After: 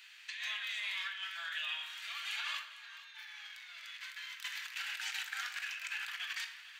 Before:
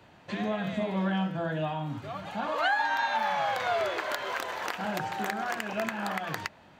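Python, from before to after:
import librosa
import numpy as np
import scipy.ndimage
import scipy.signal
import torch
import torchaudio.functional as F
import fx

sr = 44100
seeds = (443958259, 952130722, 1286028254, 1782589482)

p1 = scipy.signal.sosfilt(scipy.signal.cheby2(4, 70, 440.0, 'highpass', fs=sr, output='sos'), x)
p2 = fx.over_compress(p1, sr, threshold_db=-47.0, ratio=-0.5)
p3 = p2 + fx.echo_single(p2, sr, ms=452, db=-15.5, dry=0)
p4 = fx.room_shoebox(p3, sr, seeds[0], volume_m3=610.0, walls='mixed', distance_m=0.79)
y = p4 * librosa.db_to_amplitude(3.5)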